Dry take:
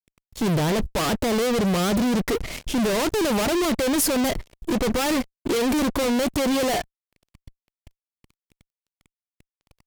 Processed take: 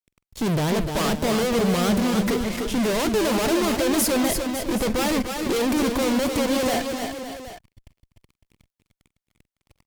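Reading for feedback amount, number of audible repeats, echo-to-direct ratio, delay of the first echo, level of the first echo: no regular repeats, 4, -4.0 dB, 47 ms, -18.5 dB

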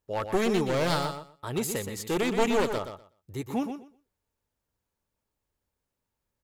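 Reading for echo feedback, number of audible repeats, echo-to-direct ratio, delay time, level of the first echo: 17%, 2, -8.0 dB, 123 ms, -8.0 dB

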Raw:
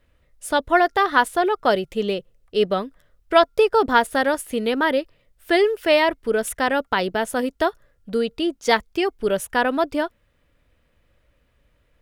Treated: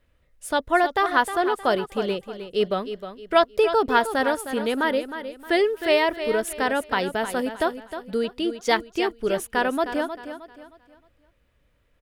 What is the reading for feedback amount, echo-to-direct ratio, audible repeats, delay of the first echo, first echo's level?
34%, -10.0 dB, 3, 311 ms, -10.5 dB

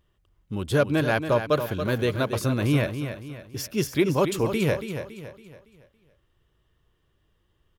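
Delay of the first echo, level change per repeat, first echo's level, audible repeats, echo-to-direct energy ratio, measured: 280 ms, -7.5 dB, -9.0 dB, 4, -8.0 dB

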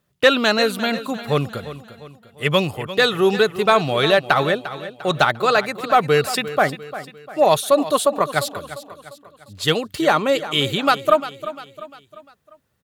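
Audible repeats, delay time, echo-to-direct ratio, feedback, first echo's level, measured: 4, 349 ms, -13.0 dB, 46%, -14.0 dB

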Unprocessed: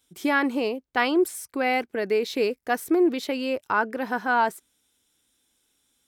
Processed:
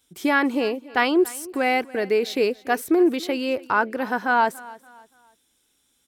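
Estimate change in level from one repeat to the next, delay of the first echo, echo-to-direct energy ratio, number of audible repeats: -9.0 dB, 286 ms, -20.0 dB, 2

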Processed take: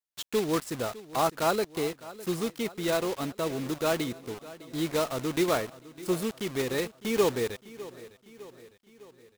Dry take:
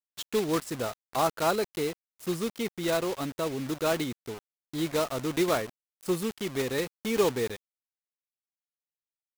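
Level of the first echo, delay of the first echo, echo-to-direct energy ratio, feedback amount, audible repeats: -18.0 dB, 606 ms, -16.5 dB, 56%, 4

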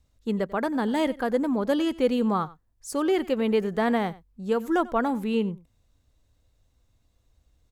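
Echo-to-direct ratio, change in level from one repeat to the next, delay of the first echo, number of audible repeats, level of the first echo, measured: -20.0 dB, no regular repeats, 93 ms, 1, -20.0 dB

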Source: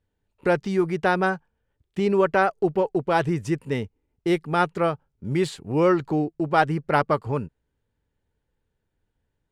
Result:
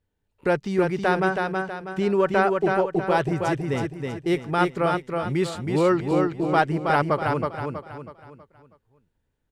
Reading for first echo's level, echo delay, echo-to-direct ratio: -4.0 dB, 322 ms, -3.0 dB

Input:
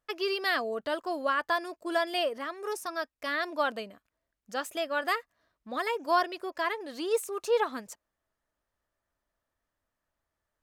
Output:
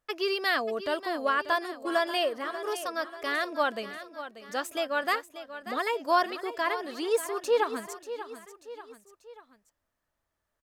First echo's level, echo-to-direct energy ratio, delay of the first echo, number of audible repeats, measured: -12.5 dB, -11.5 dB, 588 ms, 3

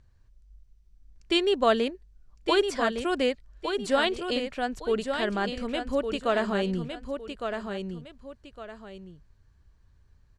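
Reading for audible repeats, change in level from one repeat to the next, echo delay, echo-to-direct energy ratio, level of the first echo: 2, -10.0 dB, 1160 ms, -6.0 dB, -6.5 dB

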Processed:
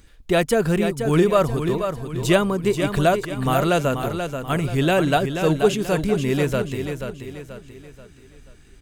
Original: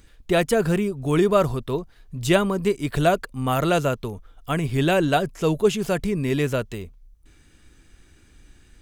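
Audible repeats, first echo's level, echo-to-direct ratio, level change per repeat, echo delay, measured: 4, -7.5 dB, -6.5 dB, -7.5 dB, 483 ms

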